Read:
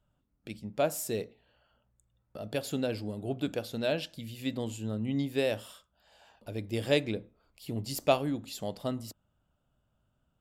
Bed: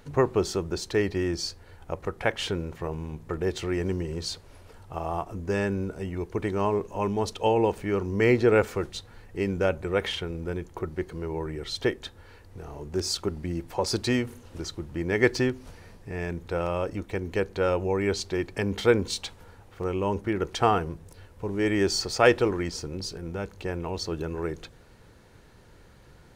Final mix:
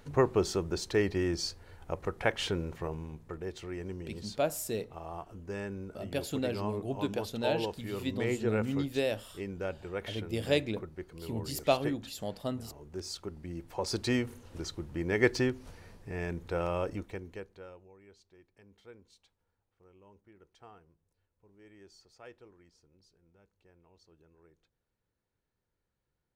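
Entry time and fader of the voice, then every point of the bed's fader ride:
3.60 s, -1.5 dB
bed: 2.77 s -3 dB
3.46 s -11.5 dB
13.31 s -11.5 dB
14.16 s -4 dB
16.94 s -4 dB
17.95 s -32 dB

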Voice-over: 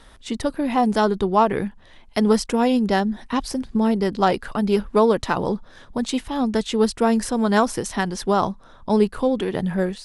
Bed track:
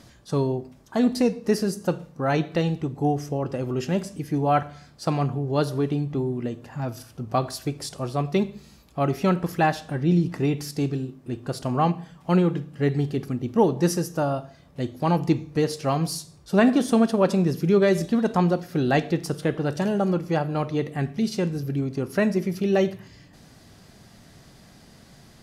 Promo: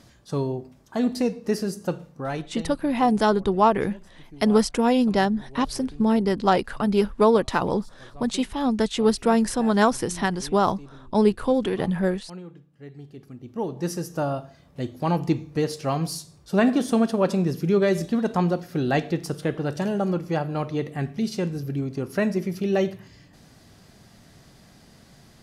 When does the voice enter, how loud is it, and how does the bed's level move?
2.25 s, -1.0 dB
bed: 2.12 s -2.5 dB
2.92 s -20 dB
12.88 s -20 dB
14.2 s -1.5 dB

